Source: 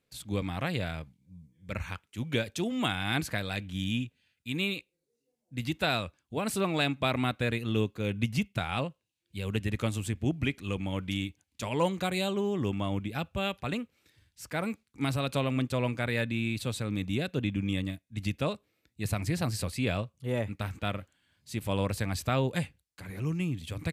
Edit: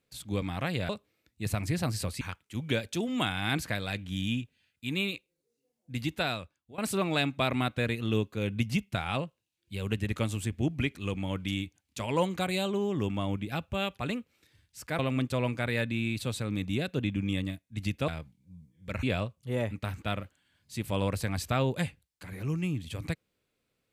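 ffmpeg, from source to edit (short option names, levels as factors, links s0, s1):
-filter_complex "[0:a]asplit=7[s0][s1][s2][s3][s4][s5][s6];[s0]atrim=end=0.892[s7];[s1]atrim=start=18.478:end=19.802[s8];[s2]atrim=start=1.838:end=6.41,asetpts=PTS-STARTPTS,afade=t=out:st=3.842:d=0.73:silence=0.11885[s9];[s3]atrim=start=6.41:end=14.622,asetpts=PTS-STARTPTS,afade=t=in:d=0.004:c=hsin:silence=0.11885[s10];[s4]atrim=start=15.388:end=18.482[s11];[s5]atrim=start=0.888:end=1.842[s12];[s6]atrim=start=19.798[s13];[s7][s8]acrossfade=d=0.004:c1=hsin:c2=hsin[s14];[s9][s10]concat=n=2:v=0:a=1[s15];[s14][s15]acrossfade=d=0.004:c1=hsin:c2=hsin[s16];[s16][s11]acrossfade=d=0.004:c1=hsin:c2=hsin[s17];[s17][s12]acrossfade=d=0.004:c1=hsin:c2=hsin[s18];[s18][s13]acrossfade=d=0.004:c1=hsin:c2=hsin"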